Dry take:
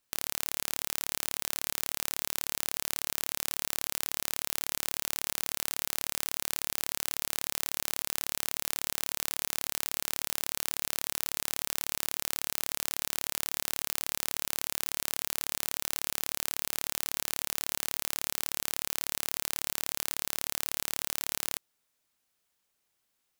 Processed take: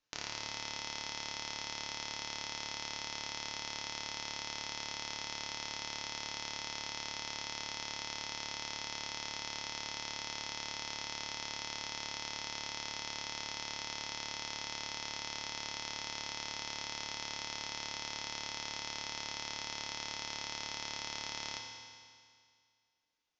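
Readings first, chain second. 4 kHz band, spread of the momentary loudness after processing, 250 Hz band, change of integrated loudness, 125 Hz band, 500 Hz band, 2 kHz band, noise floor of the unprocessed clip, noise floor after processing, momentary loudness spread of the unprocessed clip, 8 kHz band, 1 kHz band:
−1.5 dB, 0 LU, −4.0 dB, −7.5 dB, −3.5 dB, −4.5 dB, −2.0 dB, −78 dBFS, −66 dBFS, 0 LU, −10.0 dB, −0.5 dB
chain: Butterworth low-pass 6,700 Hz 96 dB per octave
reverb reduction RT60 1.8 s
feedback delay network reverb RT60 2.1 s, high-frequency decay 1×, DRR 0 dB
level −3.5 dB

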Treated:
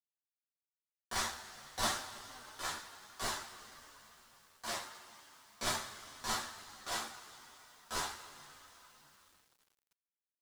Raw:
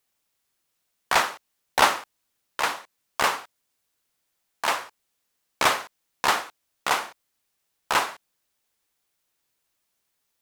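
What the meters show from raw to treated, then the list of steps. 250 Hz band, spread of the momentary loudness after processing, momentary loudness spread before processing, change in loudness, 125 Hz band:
−9.5 dB, 20 LU, 16 LU, −14.5 dB, −5.0 dB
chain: guitar amp tone stack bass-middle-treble 6-0-2
coupled-rooms reverb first 0.36 s, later 4 s, from −20 dB, DRR −7.5 dB
multi-voice chorus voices 6, 0.84 Hz, delay 11 ms, depth 3.3 ms
graphic EQ with 15 bands 630 Hz +6 dB, 2,500 Hz −10 dB, 16,000 Hz −10 dB
log-companded quantiser 6 bits
level +3.5 dB

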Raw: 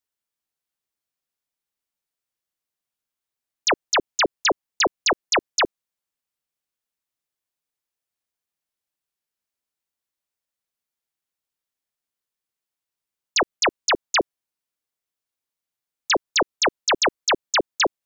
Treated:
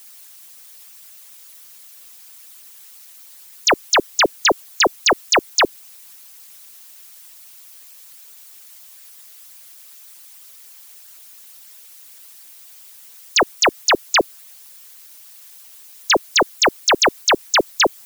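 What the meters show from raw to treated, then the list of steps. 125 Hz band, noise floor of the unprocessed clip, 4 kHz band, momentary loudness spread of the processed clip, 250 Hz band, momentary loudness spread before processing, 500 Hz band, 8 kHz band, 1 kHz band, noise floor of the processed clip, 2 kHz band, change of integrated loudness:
+5.0 dB, below −85 dBFS, +5.0 dB, 3 LU, +5.0 dB, 3 LU, +5.0 dB, +5.0 dB, +5.0 dB, −44 dBFS, +5.0 dB, +5.0 dB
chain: background noise blue −44 dBFS
harmonic and percussive parts rebalanced harmonic −15 dB
level +5 dB

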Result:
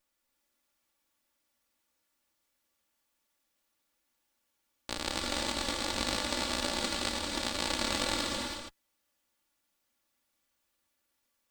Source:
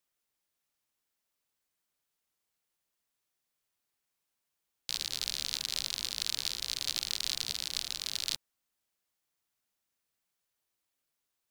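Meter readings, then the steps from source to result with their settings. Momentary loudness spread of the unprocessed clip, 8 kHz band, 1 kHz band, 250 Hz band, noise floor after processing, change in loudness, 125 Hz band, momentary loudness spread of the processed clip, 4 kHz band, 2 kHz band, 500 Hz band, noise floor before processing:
3 LU, −0.5 dB, +17.5 dB, +21.0 dB, −80 dBFS, +1.0 dB, +11.5 dB, 8 LU, −0.5 dB, +8.0 dB, +20.5 dB, −85 dBFS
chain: lower of the sound and its delayed copy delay 3.5 ms
high-shelf EQ 2,800 Hz −4 dB
compressor whose output falls as the input rises −40 dBFS, ratio −0.5
reverb whose tail is shaped and stops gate 350 ms rising, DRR 1 dB
level +4.5 dB

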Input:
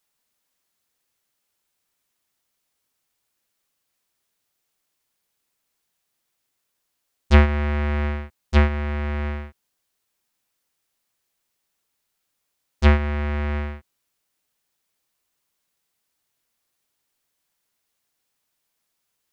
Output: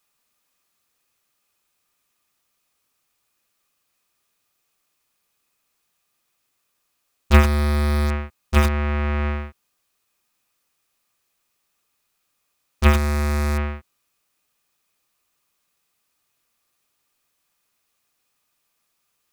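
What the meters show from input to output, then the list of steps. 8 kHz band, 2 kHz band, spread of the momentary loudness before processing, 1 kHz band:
can't be measured, +1.0 dB, 13 LU, +3.0 dB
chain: hollow resonant body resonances 1,200/2,500 Hz, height 10 dB, ringing for 40 ms
in parallel at −6.5 dB: wrap-around overflow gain 17.5 dB

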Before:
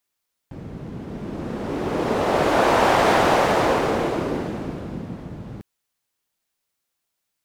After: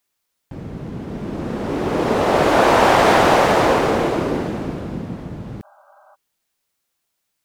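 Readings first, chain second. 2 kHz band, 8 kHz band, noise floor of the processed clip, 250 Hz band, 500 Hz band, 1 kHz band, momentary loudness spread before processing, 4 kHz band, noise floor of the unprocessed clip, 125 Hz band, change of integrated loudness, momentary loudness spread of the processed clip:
+4.0 dB, +4.0 dB, −75 dBFS, +4.0 dB, +4.0 dB, +4.0 dB, 19 LU, +4.0 dB, −79 dBFS, +4.0 dB, +4.0 dB, 19 LU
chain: healed spectral selection 0:05.66–0:06.12, 580–1,600 Hz before
level +4 dB

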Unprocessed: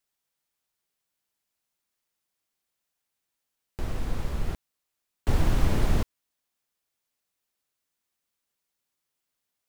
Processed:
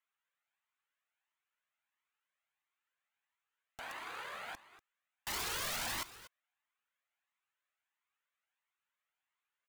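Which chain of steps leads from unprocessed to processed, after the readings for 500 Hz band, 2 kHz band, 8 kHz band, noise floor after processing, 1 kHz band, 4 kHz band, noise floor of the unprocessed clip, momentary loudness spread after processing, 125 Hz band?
−14.0 dB, −0.5 dB, +3.0 dB, below −85 dBFS, −4.5 dB, +1.5 dB, −83 dBFS, 15 LU, −28.5 dB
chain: adaptive Wiener filter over 9 samples
high-pass filter 1,300 Hz 12 dB per octave
high-shelf EQ 3,900 Hz −8 dB
notch filter 5,400 Hz, Q 6
wrap-around overflow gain 38 dB
on a send: single-tap delay 241 ms −16 dB
on the sum: flanger whose copies keep moving one way rising 1.5 Hz
level +10 dB

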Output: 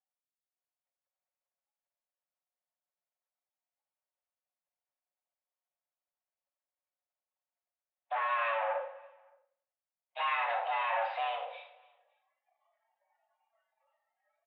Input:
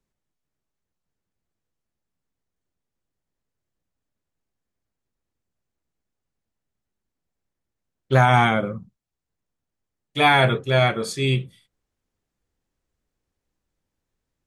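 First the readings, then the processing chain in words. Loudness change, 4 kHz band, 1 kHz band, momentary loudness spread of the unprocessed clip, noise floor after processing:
−13.5 dB, −18.0 dB, −10.0 dB, 13 LU, below −85 dBFS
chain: noise reduction from a noise print of the clip's start 23 dB
comb filter 5.3 ms, depth 60%
brickwall limiter −12.5 dBFS, peak gain reduction 9.5 dB
automatic gain control gain up to 14.5 dB
transient designer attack −10 dB, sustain +7 dB
downward compressor, threshold −16 dBFS, peak gain reduction 9 dB
soft clipping −24.5 dBFS, distortion −7 dB
frequency shifter −58 Hz
high-frequency loss of the air 250 metres
on a send: repeating echo 284 ms, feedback 33%, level −21.5 dB
on the sum: four-comb reverb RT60 0.5 s, combs from 28 ms, DRR 5.5 dB
single-sideband voice off tune +400 Hz 160–2,700 Hz
level −3.5 dB

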